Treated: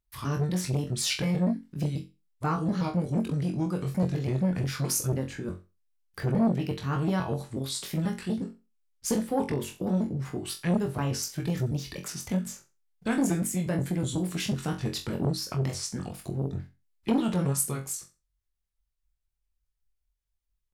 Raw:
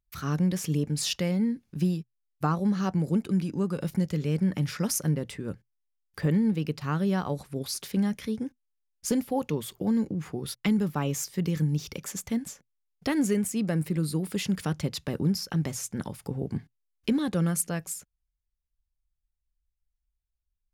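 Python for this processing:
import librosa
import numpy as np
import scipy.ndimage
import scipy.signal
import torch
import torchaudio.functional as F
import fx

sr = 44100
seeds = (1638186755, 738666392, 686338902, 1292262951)

y = fx.pitch_trill(x, sr, semitones=-3.5, every_ms=122)
y = fx.room_flutter(y, sr, wall_m=3.8, rt60_s=0.27)
y = fx.transformer_sat(y, sr, knee_hz=420.0)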